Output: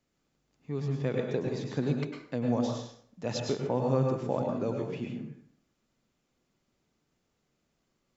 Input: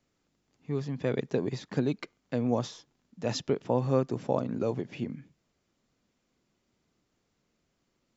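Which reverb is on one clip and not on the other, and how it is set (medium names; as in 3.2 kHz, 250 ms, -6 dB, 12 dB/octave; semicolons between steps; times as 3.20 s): plate-style reverb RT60 0.61 s, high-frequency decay 0.7×, pre-delay 90 ms, DRR 1.5 dB; trim -3 dB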